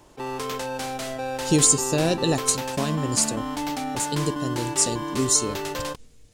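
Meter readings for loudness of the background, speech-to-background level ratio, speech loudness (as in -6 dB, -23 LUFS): -30.0 LUFS, 7.0 dB, -23.0 LUFS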